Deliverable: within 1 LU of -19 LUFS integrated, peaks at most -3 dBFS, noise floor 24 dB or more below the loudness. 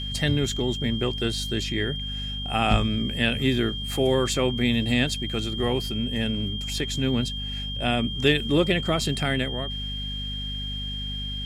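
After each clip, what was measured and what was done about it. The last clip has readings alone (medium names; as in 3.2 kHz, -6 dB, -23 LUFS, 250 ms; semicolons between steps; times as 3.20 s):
hum 50 Hz; highest harmonic 250 Hz; hum level -31 dBFS; steady tone 3.2 kHz; tone level -32 dBFS; loudness -25.5 LUFS; peak level -5.0 dBFS; loudness target -19.0 LUFS
-> de-hum 50 Hz, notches 5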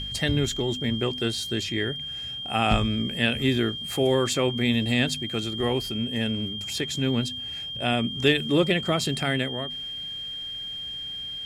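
hum not found; steady tone 3.2 kHz; tone level -32 dBFS
-> band-stop 3.2 kHz, Q 30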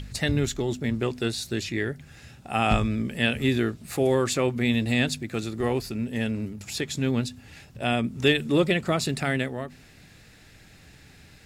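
steady tone not found; loudness -26.0 LUFS; peak level -7.0 dBFS; loudness target -19.0 LUFS
-> trim +7 dB; peak limiter -3 dBFS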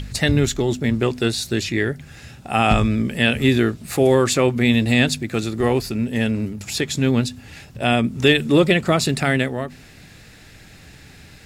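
loudness -19.5 LUFS; peak level -3.0 dBFS; noise floor -45 dBFS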